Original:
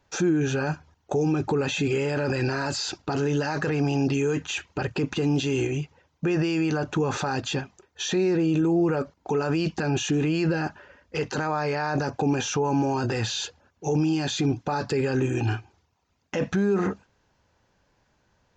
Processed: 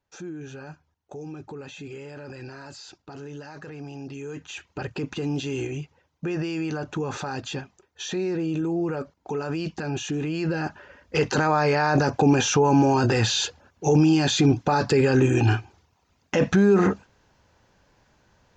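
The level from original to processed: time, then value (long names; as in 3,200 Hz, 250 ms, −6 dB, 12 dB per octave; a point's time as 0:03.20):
0:04.06 −14 dB
0:04.81 −4 dB
0:10.30 −4 dB
0:11.17 +5.5 dB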